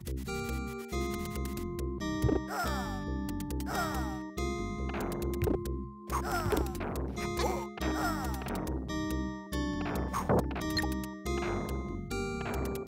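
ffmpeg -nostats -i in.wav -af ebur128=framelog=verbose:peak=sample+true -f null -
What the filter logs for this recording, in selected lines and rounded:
Integrated loudness:
  I:         -34.6 LUFS
  Threshold: -44.5 LUFS
Loudness range:
  LRA:         1.3 LU
  Threshold: -54.4 LUFS
  LRA low:   -35.0 LUFS
  LRA high:  -33.7 LUFS
Sample peak:
  Peak:      -15.2 dBFS
True peak:
  Peak:      -15.2 dBFS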